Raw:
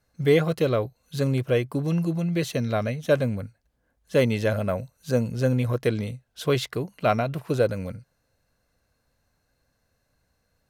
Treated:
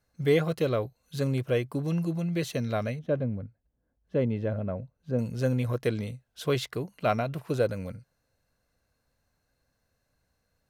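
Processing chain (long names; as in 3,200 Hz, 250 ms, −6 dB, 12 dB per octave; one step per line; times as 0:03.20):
0:02.99–0:05.19: drawn EQ curve 310 Hz 0 dB, 3,200 Hz −14 dB, 8,500 Hz −28 dB
level −4 dB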